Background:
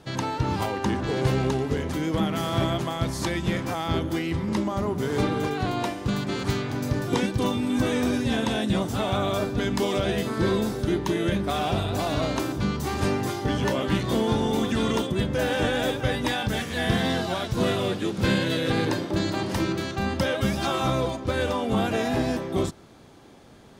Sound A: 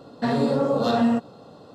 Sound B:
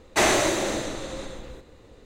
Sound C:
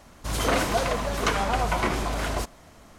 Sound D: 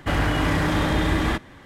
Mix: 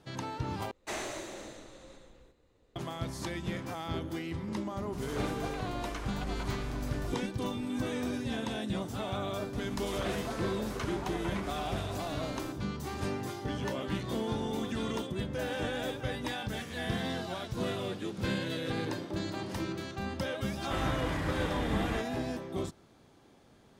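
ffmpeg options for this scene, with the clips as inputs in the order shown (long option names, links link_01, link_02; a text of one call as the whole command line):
ffmpeg -i bed.wav -i cue0.wav -i cue1.wav -i cue2.wav -i cue3.wav -filter_complex "[3:a]asplit=2[link_01][link_02];[0:a]volume=-10dB[link_03];[link_01]asubboost=boost=10.5:cutoff=59[link_04];[link_02]acompressor=mode=upward:threshold=-30dB:ratio=4:attack=28:release=22:knee=2.83:detection=peak[link_05];[link_03]asplit=2[link_06][link_07];[link_06]atrim=end=0.714[link_08];[2:a]atrim=end=2.05,asetpts=PTS-STARTPTS,volume=-17.5dB[link_09];[link_07]atrim=start=2.756[link_10];[link_04]atrim=end=2.98,asetpts=PTS-STARTPTS,volume=-18dB,afade=type=in:duration=0.004:curve=hsin,afade=type=out:start_time=2.976:duration=0.004:curve=hsin,adelay=4680[link_11];[link_05]atrim=end=2.98,asetpts=PTS-STARTPTS,volume=-15.5dB,afade=type=in:duration=0.004:curve=hsin,afade=type=out:start_time=2.976:duration=0.004:curve=hsin,adelay=9530[link_12];[4:a]atrim=end=1.65,asetpts=PTS-STARTPTS,volume=-12.5dB,afade=type=in:duration=0.004:curve=hsin,afade=type=out:start_time=1.646:duration=0.004:curve=hsin,adelay=20640[link_13];[link_08][link_09]acrossfade=duration=0.004:curve1=hsin:curve2=hsin[link_14];[link_14][link_10]acrossfade=duration=0.004:curve1=hsin:curve2=hsin[link_15];[link_15][link_11][link_12][link_13]amix=inputs=4:normalize=0" out.wav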